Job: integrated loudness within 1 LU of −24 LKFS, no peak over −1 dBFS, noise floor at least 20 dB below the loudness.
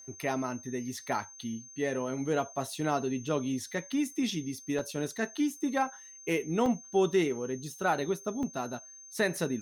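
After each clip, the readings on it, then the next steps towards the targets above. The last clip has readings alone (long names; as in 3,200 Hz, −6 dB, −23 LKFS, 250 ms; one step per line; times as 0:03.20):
number of dropouts 3; longest dropout 2.5 ms; interfering tone 6,300 Hz; level of the tone −48 dBFS; integrated loudness −32.0 LKFS; sample peak −15.5 dBFS; target loudness −24.0 LKFS
→ repair the gap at 0:04.79/0:06.66/0:08.43, 2.5 ms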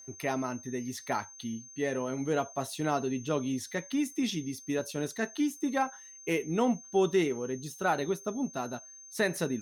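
number of dropouts 0; interfering tone 6,300 Hz; level of the tone −48 dBFS
→ notch filter 6,300 Hz, Q 30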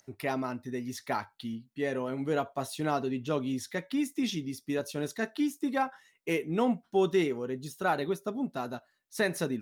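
interfering tone none found; integrated loudness −32.5 LKFS; sample peak −15.5 dBFS; target loudness −24.0 LKFS
→ level +8.5 dB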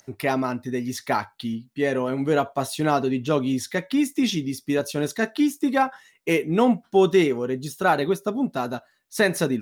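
integrated loudness −24.0 LKFS; sample peak −7.0 dBFS; background noise floor −63 dBFS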